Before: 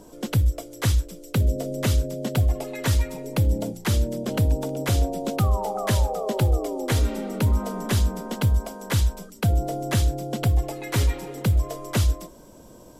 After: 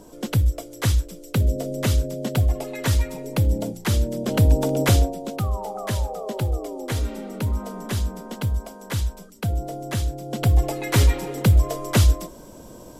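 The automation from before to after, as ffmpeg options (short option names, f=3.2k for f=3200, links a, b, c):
-af "volume=16dB,afade=t=in:st=4.12:d=0.7:silence=0.473151,afade=t=out:st=4.82:d=0.34:silence=0.281838,afade=t=in:st=10.23:d=0.41:silence=0.375837"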